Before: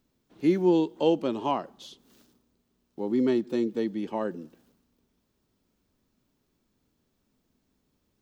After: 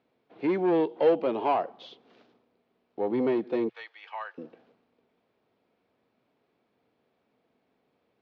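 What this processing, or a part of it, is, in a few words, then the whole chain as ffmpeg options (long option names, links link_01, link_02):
overdrive pedal into a guitar cabinet: -filter_complex "[0:a]asettb=1/sr,asplit=3[link_01][link_02][link_03];[link_01]atrim=end=3.694[link_04];[link_02]atrim=start=3.69:end=4.38,asetpts=PTS-STARTPTS,afade=type=in:duration=0.004:curve=qsin,afade=type=out:start_time=0.686:duration=0.004:curve=qsin,highpass=frequency=1100:width=0.5412,highpass=frequency=1100:width=1.3066[link_05];[link_03]atrim=start=4.376[link_06];[link_04][link_05]acrossfade=duration=0.004:curve1=hsin:curve2=qsin[link_07];[link_07][link_06]acrossfade=duration=0.004:curve1=qsin:curve2=hsin,asplit=2[link_08][link_09];[link_09]highpass=frequency=720:poles=1,volume=20dB,asoftclip=type=tanh:threshold=-11dB[link_10];[link_08][link_10]amix=inputs=2:normalize=0,lowpass=frequency=1500:poles=1,volume=-6dB,highpass=77,equalizer=frequency=120:width_type=q:width=4:gain=4,equalizer=frequency=470:width_type=q:width=4:gain=7,equalizer=frequency=710:width_type=q:width=4:gain=8,equalizer=frequency=2300:width_type=q:width=4:gain=5,lowpass=frequency=4500:width=0.5412,lowpass=frequency=4500:width=1.3066,volume=-7.5dB"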